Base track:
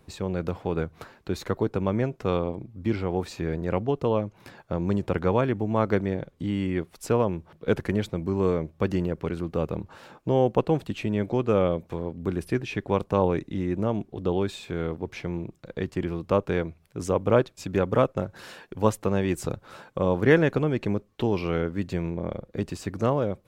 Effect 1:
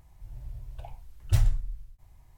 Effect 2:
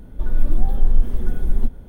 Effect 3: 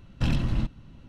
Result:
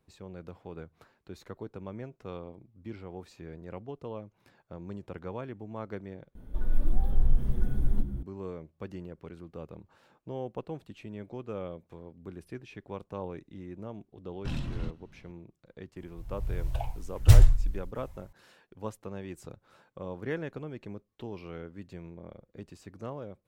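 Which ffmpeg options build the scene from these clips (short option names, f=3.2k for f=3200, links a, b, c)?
-filter_complex "[0:a]volume=-15.5dB[a];[2:a]asplit=6[b][c][d][e][f][g];[c]adelay=257,afreqshift=-73,volume=-15.5dB[h];[d]adelay=514,afreqshift=-146,volume=-20.7dB[i];[e]adelay=771,afreqshift=-219,volume=-25.9dB[j];[f]adelay=1028,afreqshift=-292,volume=-31.1dB[k];[g]adelay=1285,afreqshift=-365,volume=-36.3dB[l];[b][h][i][j][k][l]amix=inputs=6:normalize=0[m];[3:a]dynaudnorm=f=120:g=3:m=8dB[n];[1:a]dynaudnorm=f=350:g=3:m=14dB[o];[a]asplit=2[p][q];[p]atrim=end=6.354[r];[m]atrim=end=1.88,asetpts=PTS-STARTPTS,volume=-8dB[s];[q]atrim=start=8.226[t];[n]atrim=end=1.08,asetpts=PTS-STARTPTS,volume=-16.5dB,afade=t=in:d=0.004:c=hsin,afade=t=out:st=1.076:d=0.004:c=hsin,adelay=14240[u];[o]atrim=end=2.37,asetpts=PTS-STARTPTS,volume=-2dB,afade=t=in:d=0.004:c=hsin,afade=t=out:st=2.366:d=0.004:c=hsin,adelay=15960[v];[r][s]acrossfade=d=0.004:c1=hsin:c2=hsin[w];[w][t]acrossfade=d=0.004:c1=hsin:c2=hsin[x];[x][u][v]amix=inputs=3:normalize=0"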